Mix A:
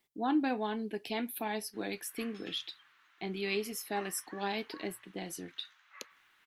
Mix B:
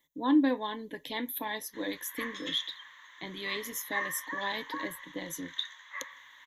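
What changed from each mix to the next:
background +10.0 dB; master: add rippled EQ curve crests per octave 1.1, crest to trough 16 dB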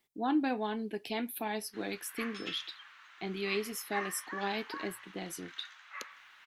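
master: remove rippled EQ curve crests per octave 1.1, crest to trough 16 dB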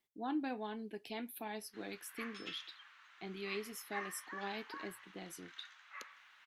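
speech -8.0 dB; background -5.5 dB

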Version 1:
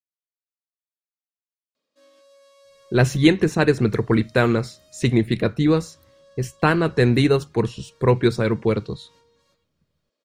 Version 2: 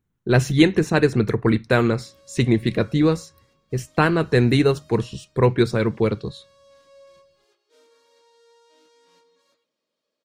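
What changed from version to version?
speech: entry -2.65 s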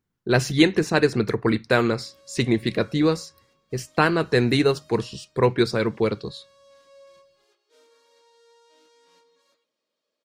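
speech: add peaking EQ 4.8 kHz +9 dB 0.27 oct; master: add bass shelf 180 Hz -8.5 dB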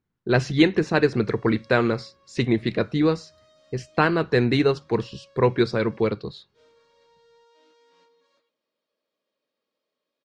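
background: entry -1.15 s; master: add distance through air 120 m

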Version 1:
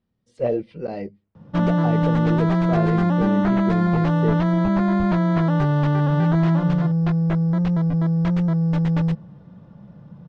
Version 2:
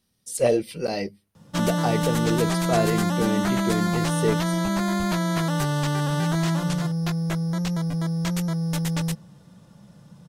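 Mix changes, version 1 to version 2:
background -6.5 dB; master: remove tape spacing loss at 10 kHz 43 dB

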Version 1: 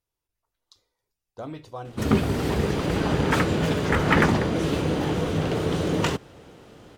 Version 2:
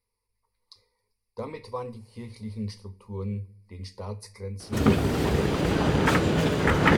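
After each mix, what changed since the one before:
speech: add rippled EQ curve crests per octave 0.9, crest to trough 16 dB; background: entry +2.75 s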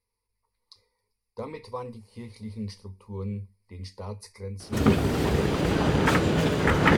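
reverb: off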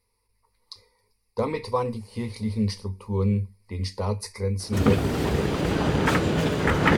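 speech +10.0 dB

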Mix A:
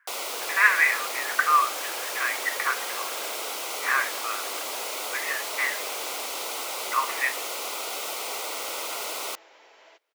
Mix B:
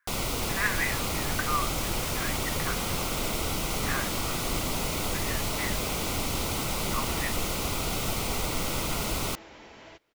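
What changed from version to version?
speech -10.0 dB; second sound +4.0 dB; master: remove high-pass 440 Hz 24 dB/octave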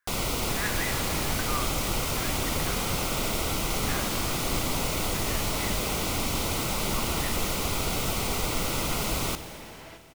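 speech -7.5 dB; reverb: on, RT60 2.7 s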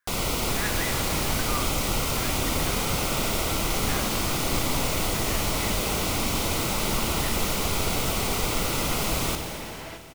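first sound: send +7.5 dB; second sound +6.5 dB

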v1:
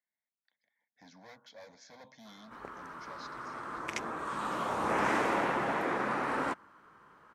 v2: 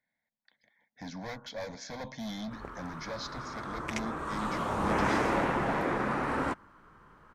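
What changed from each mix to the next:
speech +11.5 dB; master: remove high-pass 330 Hz 6 dB/octave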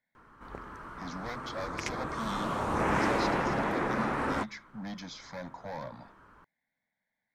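background: entry -2.10 s

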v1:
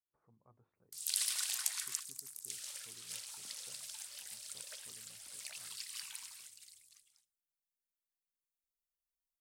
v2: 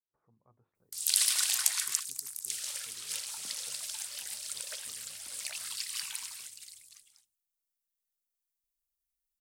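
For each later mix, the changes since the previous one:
background +9.0 dB; reverb: off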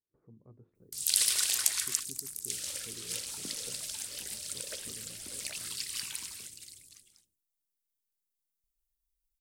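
master: add resonant low shelf 560 Hz +12.5 dB, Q 1.5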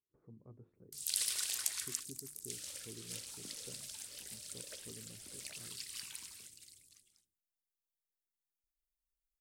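background -8.5 dB

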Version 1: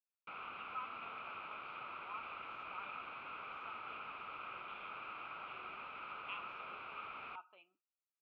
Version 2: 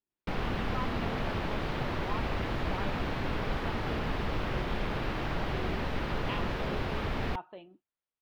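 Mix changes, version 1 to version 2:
background: remove distance through air 250 m; master: remove two resonant band-passes 1.8 kHz, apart 0.91 oct

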